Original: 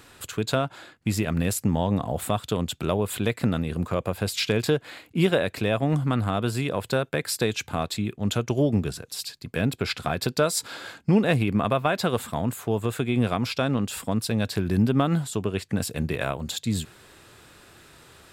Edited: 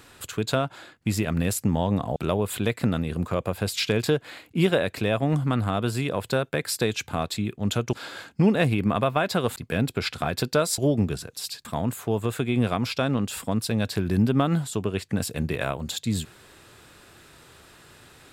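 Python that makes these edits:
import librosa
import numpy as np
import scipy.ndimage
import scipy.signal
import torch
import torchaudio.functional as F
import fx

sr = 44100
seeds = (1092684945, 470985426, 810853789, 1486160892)

y = fx.edit(x, sr, fx.cut(start_s=2.16, length_s=0.6),
    fx.swap(start_s=8.53, length_s=0.87, other_s=10.62, other_length_s=1.63), tone=tone)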